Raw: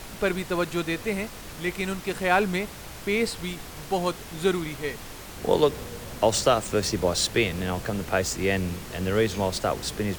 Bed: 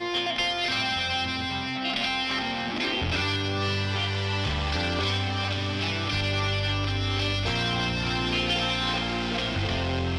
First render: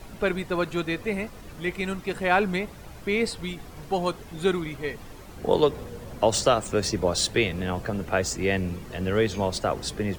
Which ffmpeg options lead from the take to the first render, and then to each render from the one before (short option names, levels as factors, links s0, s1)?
-af "afftdn=nr=10:nf=-41"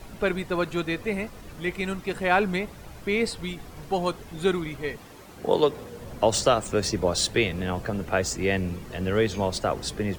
-filter_complex "[0:a]asettb=1/sr,asplit=3[s0][s1][s2];[s0]atrim=end=4.974[s3];[s1]atrim=start=4.97:end=6,asetpts=PTS-STARTPTS,afade=t=in:d=0.004:c=qsin,afade=t=out:st=1.026:d=0.004:c=qsin,highpass=f=160:p=1[s4];[s2]atrim=start=5.996[s5];[s3][s4]acrossfade=d=0.004:c1=hsin:c2=qsin[s6];[s6][s5]acrossfade=d=0.004:c1=qsin:c2=hsin"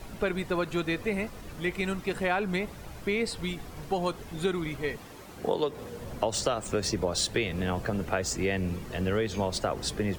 -af "acompressor=threshold=0.0631:ratio=6"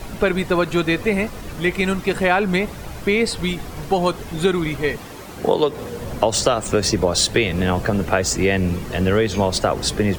-af "volume=3.35"